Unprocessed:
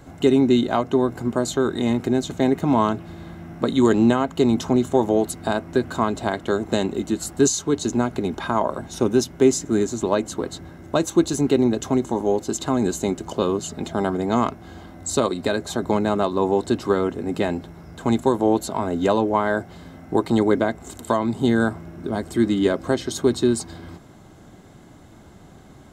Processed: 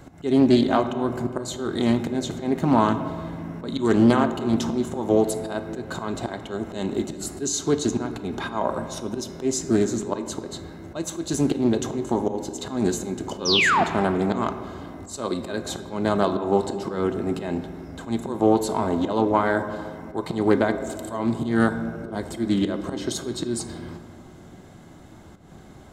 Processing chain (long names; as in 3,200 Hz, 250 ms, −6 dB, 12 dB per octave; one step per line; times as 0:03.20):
sound drawn into the spectrogram fall, 0:13.45–0:13.84, 620–6,300 Hz −19 dBFS
volume swells 170 ms
on a send at −8 dB: convolution reverb RT60 2.1 s, pre-delay 5 ms
on the sum: highs frequency-modulated by the lows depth 0.25 ms